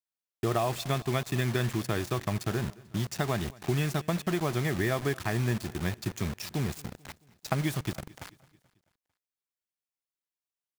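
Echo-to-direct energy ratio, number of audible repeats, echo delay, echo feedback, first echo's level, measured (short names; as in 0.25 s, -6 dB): -21.5 dB, 3, 0.22 s, 55%, -23.0 dB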